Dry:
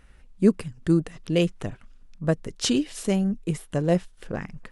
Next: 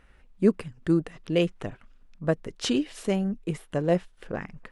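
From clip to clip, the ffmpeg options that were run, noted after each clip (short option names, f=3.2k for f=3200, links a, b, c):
-af "bass=f=250:g=-5,treble=f=4k:g=-8"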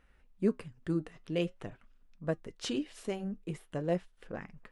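-af "flanger=delay=3.7:depth=4.5:regen=-76:speed=0.46:shape=triangular,volume=-4dB"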